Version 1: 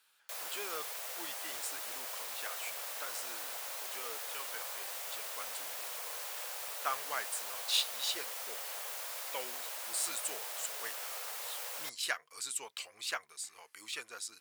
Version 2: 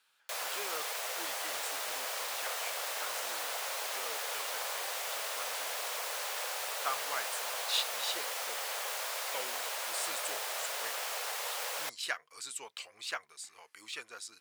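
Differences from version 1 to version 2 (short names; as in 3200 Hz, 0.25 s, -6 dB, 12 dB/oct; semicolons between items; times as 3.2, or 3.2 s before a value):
background +8.0 dB; master: add high shelf 9100 Hz -9 dB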